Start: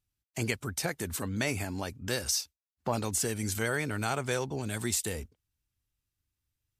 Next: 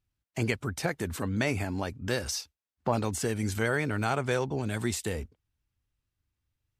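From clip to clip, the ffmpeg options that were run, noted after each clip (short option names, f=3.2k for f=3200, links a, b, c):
-af "highshelf=f=4.6k:g=-12,volume=3.5dB"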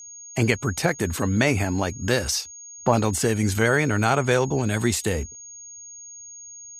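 -af "aeval=exprs='val(0)+0.00447*sin(2*PI*6600*n/s)':c=same,volume=8dB"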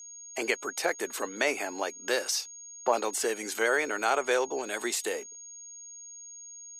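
-af "highpass=f=370:w=0.5412,highpass=f=370:w=1.3066,volume=-4.5dB"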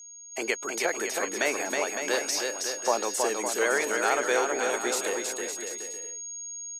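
-af "aecho=1:1:320|560|740|875|976.2:0.631|0.398|0.251|0.158|0.1"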